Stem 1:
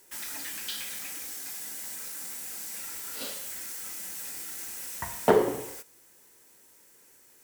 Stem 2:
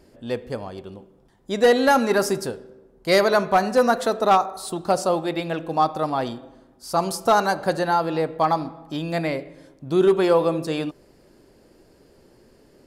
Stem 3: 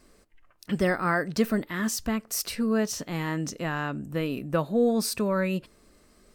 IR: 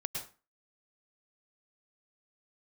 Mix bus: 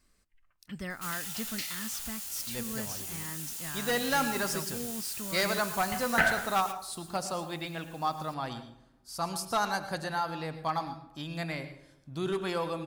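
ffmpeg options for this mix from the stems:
-filter_complex "[0:a]aeval=exprs='val(0)*sin(2*PI*1100*n/s)':c=same,adelay=900,volume=2dB[a];[1:a]adelay=2250,volume=-8.5dB,asplit=2[b][c];[c]volume=-6.5dB[d];[2:a]volume=-8.5dB[e];[3:a]atrim=start_sample=2205[f];[d][f]afir=irnorm=-1:irlink=0[g];[a][b][e][g]amix=inputs=4:normalize=0,equalizer=f=450:w=0.7:g=-11.5"

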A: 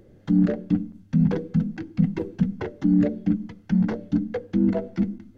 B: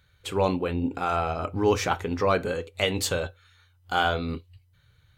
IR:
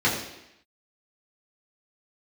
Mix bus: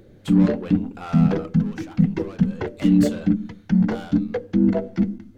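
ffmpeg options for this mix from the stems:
-filter_complex "[0:a]volume=3dB[a];[1:a]asoftclip=type=tanh:threshold=-25.5dB,volume=5dB,afade=t=out:st=1.31:d=0.34:silence=0.298538,afade=t=in:st=2.45:d=0.36:silence=0.375837,afade=t=out:st=3.72:d=0.48:silence=0.334965[b];[a][b]amix=inputs=2:normalize=0"

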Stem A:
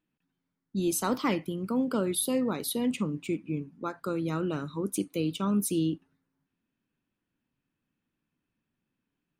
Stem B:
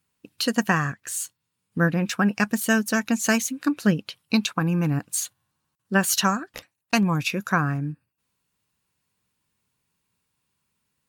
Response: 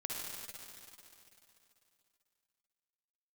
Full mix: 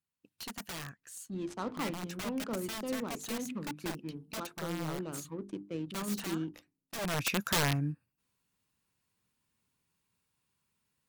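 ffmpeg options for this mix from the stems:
-filter_complex "[0:a]adynamicsmooth=sensitivity=6.5:basefreq=610,lowpass=9.6k,bandreject=f=50:t=h:w=6,bandreject=f=100:t=h:w=6,bandreject=f=150:t=h:w=6,bandreject=f=200:t=h:w=6,bandreject=f=250:t=h:w=6,bandreject=f=300:t=h:w=6,bandreject=f=350:t=h:w=6,bandreject=f=400:t=h:w=6,bandreject=f=450:t=h:w=6,adelay=550,volume=-8dB[a];[1:a]aeval=exprs='(mod(7.5*val(0)+1,2)-1)/7.5':c=same,volume=-4.5dB,afade=t=in:st=6.98:d=0.34:silence=0.223872[b];[a][b]amix=inputs=2:normalize=0"

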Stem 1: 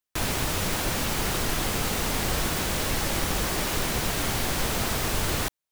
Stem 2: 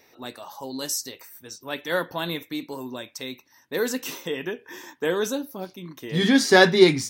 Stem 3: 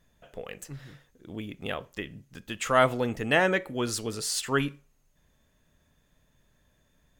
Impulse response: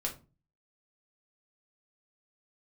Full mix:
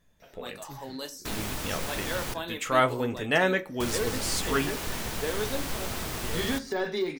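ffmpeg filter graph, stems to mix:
-filter_complex "[0:a]adelay=1100,volume=-9dB,asplit=3[a][b][c];[a]atrim=end=2.34,asetpts=PTS-STARTPTS,afade=t=out:st=2.336:d=0.004:c=hsin[d];[b]atrim=start=2.34:end=3.8,asetpts=PTS-STARTPTS,volume=0[e];[c]atrim=start=3.8,asetpts=PTS-STARTPTS,afade=t=in:d=0.004:c=hsin[f];[d][e][f]concat=n=3:v=0:a=1,asplit=2[g][h];[h]volume=-11.5dB[i];[1:a]highpass=280,deesser=0.7,alimiter=limit=-17dB:level=0:latency=1:release=285,adelay=200,volume=-7.5dB,asplit=2[j][k];[k]volume=-6.5dB[l];[2:a]flanger=delay=9.9:depth=1.9:regen=-51:speed=1.4:shape=triangular,volume=1.5dB,asplit=2[m][n];[n]volume=-14.5dB[o];[3:a]atrim=start_sample=2205[p];[i][l][o]amix=inputs=3:normalize=0[q];[q][p]afir=irnorm=-1:irlink=0[r];[g][j][m][r]amix=inputs=4:normalize=0"

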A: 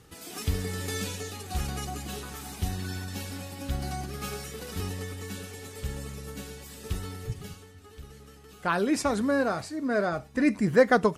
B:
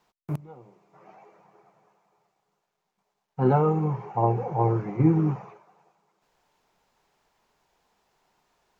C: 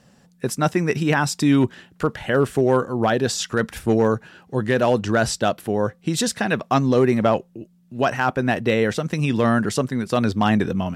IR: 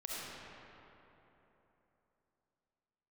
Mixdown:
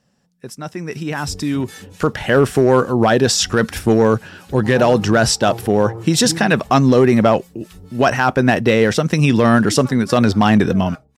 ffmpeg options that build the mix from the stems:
-filter_complex "[0:a]acrossover=split=750[a][b];[a]aeval=exprs='val(0)*(1-1/2+1/2*cos(2*PI*3.7*n/s))':c=same[c];[b]aeval=exprs='val(0)*(1-1/2-1/2*cos(2*PI*3.7*n/s))':c=same[d];[c][d]amix=inputs=2:normalize=0,adelay=800,volume=-9.5dB[e];[1:a]adelay=1250,volume=-14dB[f];[2:a]equalizer=f=5.4k:w=7.7:g=6,alimiter=limit=-11dB:level=0:latency=1:release=25,afade=t=in:st=1.82:d=0.31:silence=0.334965,asplit=2[g][h];[h]apad=whole_len=527888[i];[e][i]sidechaincompress=threshold=-23dB:ratio=8:attack=6.3:release=149[j];[j][f][g]amix=inputs=3:normalize=0,dynaudnorm=f=210:g=9:m=9dB,asoftclip=type=hard:threshold=-4.5dB"

